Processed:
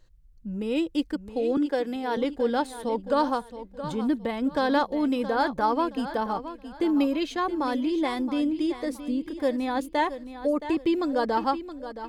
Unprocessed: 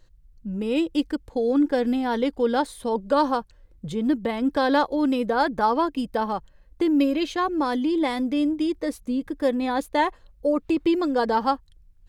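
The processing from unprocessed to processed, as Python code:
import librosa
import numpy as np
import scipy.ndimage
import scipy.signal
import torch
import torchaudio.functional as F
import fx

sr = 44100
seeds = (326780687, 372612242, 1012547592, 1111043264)

p1 = fx.highpass(x, sr, hz=290.0, slope=24, at=(1.57, 2.17))
p2 = p1 + fx.echo_feedback(p1, sr, ms=671, feedback_pct=30, wet_db=-12.0, dry=0)
y = p2 * 10.0 ** (-3.0 / 20.0)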